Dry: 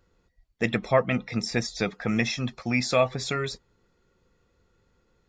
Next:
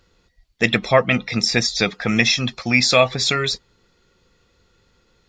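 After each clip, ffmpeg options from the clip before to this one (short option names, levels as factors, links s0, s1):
-af "equalizer=f=4000:w=0.68:g=9.5,volume=1.88"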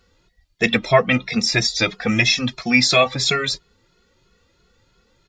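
-filter_complex "[0:a]asplit=2[s0][s1];[s1]adelay=2.3,afreqshift=3[s2];[s0][s2]amix=inputs=2:normalize=1,volume=1.41"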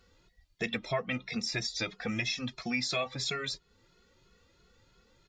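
-af "acompressor=threshold=0.0178:ratio=2,volume=0.596"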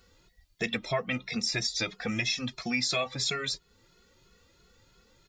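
-af "highshelf=f=7700:g=9,volume=1.26"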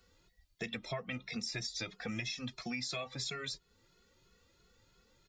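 -filter_complex "[0:a]acrossover=split=160[s0][s1];[s1]acompressor=threshold=0.0251:ratio=2.5[s2];[s0][s2]amix=inputs=2:normalize=0,volume=0.501"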